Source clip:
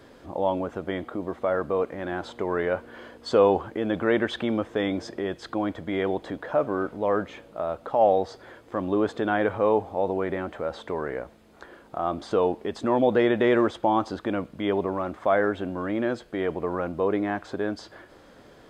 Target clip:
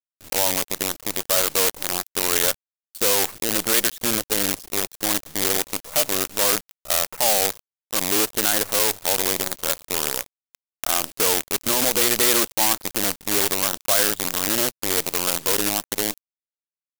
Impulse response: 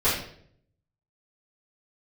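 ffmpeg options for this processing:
-af "afwtdn=0.0316,alimiter=limit=-15dB:level=0:latency=1:release=58,acrusher=bits=5:dc=4:mix=0:aa=0.000001,crystalizer=i=8.5:c=0,atempo=1.1,volume=-3dB"

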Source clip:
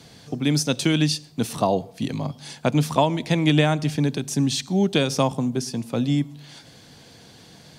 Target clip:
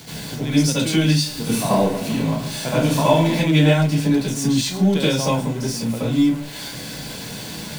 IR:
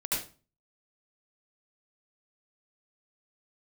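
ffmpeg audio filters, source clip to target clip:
-filter_complex "[0:a]aeval=exprs='val(0)+0.5*0.0376*sgn(val(0))':channel_layout=same,bandreject=frequency=1200:width=9.1,asettb=1/sr,asplit=3[link_01][link_02][link_03];[link_01]atrim=end=1.154[link_04];[link_02]atrim=start=1.15:end=3.33,asetpts=PTS-STARTPTS,afade=type=in:duration=0.004:curve=qsin,afade=type=out:start_time=2.176:duration=0.004:curve=qsin,aecho=1:1:30|75|142.5|243.8|395.6:0.631|0.398|0.251|0.158|0.1,atrim=end_sample=96138[link_05];[link_03]atrim=start=3.326[link_06];[link_04][link_05]acrossfade=duration=0.004:curve1=hsin:curve2=qsin[link_07];[link_07][link_06]acrossfade=duration=0.004:curve1=qsin:curve2=hsin[link_08];[1:a]atrim=start_sample=2205,atrim=end_sample=6174[link_09];[link_08][link_09]afir=irnorm=-1:irlink=0,volume=-5dB"

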